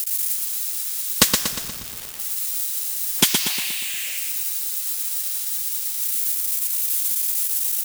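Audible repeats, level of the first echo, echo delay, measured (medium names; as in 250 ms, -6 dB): 6, -5.0 dB, 119 ms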